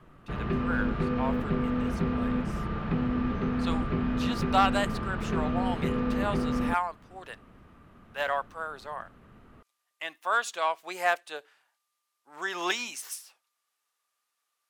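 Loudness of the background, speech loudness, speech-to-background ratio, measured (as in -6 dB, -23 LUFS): -30.0 LUFS, -32.5 LUFS, -2.5 dB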